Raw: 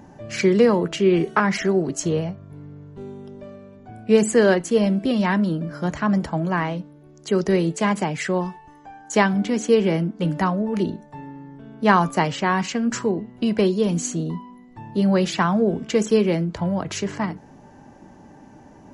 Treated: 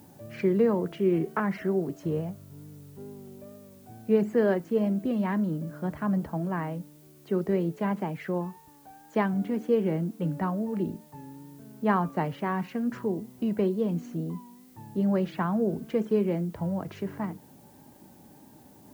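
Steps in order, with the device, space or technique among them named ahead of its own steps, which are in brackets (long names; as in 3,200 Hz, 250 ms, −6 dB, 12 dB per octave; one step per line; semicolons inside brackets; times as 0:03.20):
cassette deck with a dirty head (head-to-tape spacing loss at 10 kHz 42 dB; tape wow and flutter; white noise bed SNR 37 dB)
high-pass filter 71 Hz
high-shelf EQ 8,500 Hz +8 dB
level −5.5 dB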